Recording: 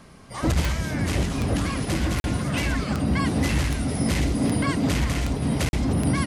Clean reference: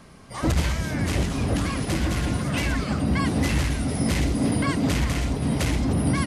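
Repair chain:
click removal
repair the gap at 0:02.20/0:05.69, 41 ms

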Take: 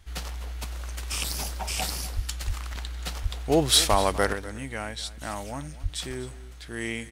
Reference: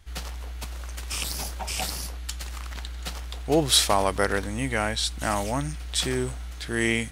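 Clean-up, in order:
clipped peaks rebuilt −9.5 dBFS
high-pass at the plosives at 0:02.15/0:02.46/0:03.22/0:03.90/0:05.82
echo removal 248 ms −17.5 dB
level correction +8 dB, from 0:04.33

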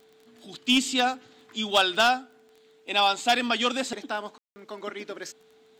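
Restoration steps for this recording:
clipped peaks rebuilt −13 dBFS
click removal
notch filter 440 Hz, Q 30
ambience match 0:04.38–0:04.56

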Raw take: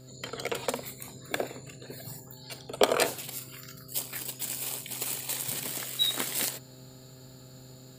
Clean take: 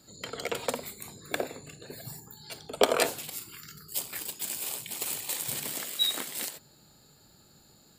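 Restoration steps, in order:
hum removal 129 Hz, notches 5
level 0 dB, from 0:06.19 −5 dB

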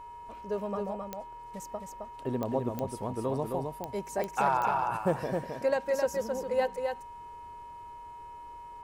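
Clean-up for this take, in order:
click removal
hum removal 428.4 Hz, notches 7
notch filter 950 Hz, Q 30
echo removal 264 ms −4.5 dB

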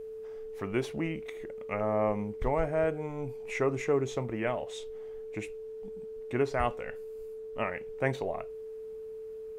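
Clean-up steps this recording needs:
notch filter 440 Hz, Q 30

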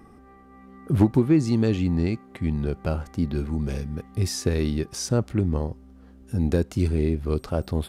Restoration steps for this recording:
clipped peaks rebuilt −9 dBFS

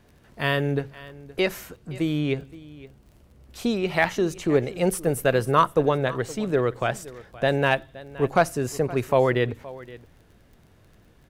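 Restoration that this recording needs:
clipped peaks rebuilt −7 dBFS
click removal
echo removal 520 ms −19 dB

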